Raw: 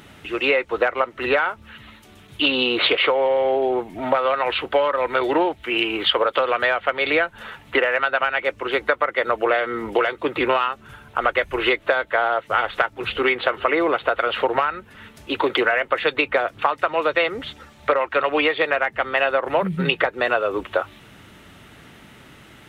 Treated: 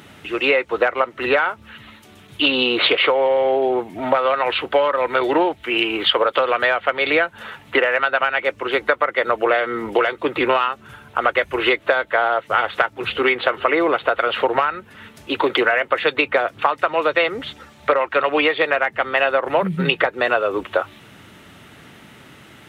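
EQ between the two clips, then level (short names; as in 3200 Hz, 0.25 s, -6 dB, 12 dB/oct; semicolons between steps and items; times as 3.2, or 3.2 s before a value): HPF 79 Hz; +2.0 dB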